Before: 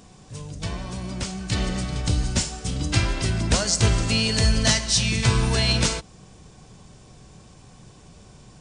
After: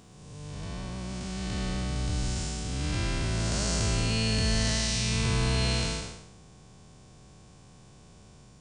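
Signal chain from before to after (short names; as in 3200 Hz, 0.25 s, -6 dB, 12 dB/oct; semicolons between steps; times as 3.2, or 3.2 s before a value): time blur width 0.342 s; gain -3.5 dB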